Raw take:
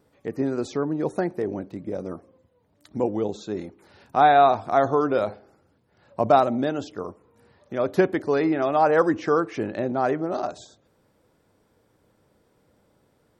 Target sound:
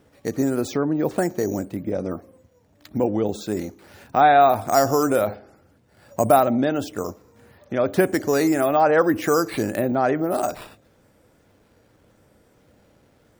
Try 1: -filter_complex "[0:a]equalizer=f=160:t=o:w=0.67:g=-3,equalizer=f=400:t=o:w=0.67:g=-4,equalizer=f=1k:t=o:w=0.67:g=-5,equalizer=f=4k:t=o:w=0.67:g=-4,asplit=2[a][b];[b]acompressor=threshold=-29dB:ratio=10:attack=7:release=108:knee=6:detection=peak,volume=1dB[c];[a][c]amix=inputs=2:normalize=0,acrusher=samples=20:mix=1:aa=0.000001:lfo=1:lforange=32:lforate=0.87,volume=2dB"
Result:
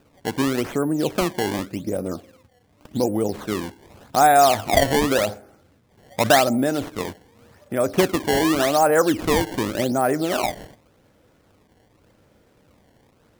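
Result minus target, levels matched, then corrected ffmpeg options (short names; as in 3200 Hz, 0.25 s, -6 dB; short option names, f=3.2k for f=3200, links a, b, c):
decimation with a swept rate: distortion +14 dB
-filter_complex "[0:a]equalizer=f=160:t=o:w=0.67:g=-3,equalizer=f=400:t=o:w=0.67:g=-4,equalizer=f=1k:t=o:w=0.67:g=-5,equalizer=f=4k:t=o:w=0.67:g=-4,asplit=2[a][b];[b]acompressor=threshold=-29dB:ratio=10:attack=7:release=108:knee=6:detection=peak,volume=1dB[c];[a][c]amix=inputs=2:normalize=0,acrusher=samples=4:mix=1:aa=0.000001:lfo=1:lforange=6.4:lforate=0.87,volume=2dB"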